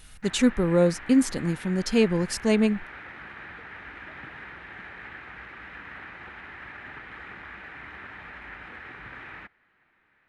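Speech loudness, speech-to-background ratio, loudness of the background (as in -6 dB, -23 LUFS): -24.0 LUFS, 17.0 dB, -41.0 LUFS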